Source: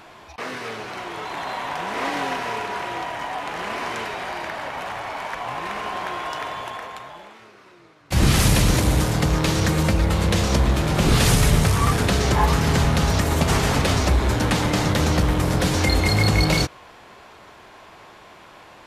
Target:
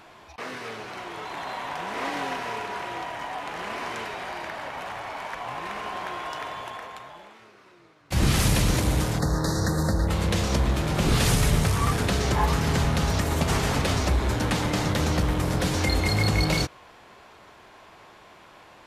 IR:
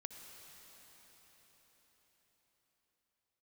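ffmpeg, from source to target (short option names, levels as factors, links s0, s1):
-filter_complex "[0:a]asplit=3[s0][s1][s2];[s0]afade=t=out:st=9.18:d=0.02[s3];[s1]asuperstop=centerf=2700:order=12:qfactor=1.4,afade=t=in:st=9.18:d=0.02,afade=t=out:st=10.07:d=0.02[s4];[s2]afade=t=in:st=10.07:d=0.02[s5];[s3][s4][s5]amix=inputs=3:normalize=0,volume=0.596"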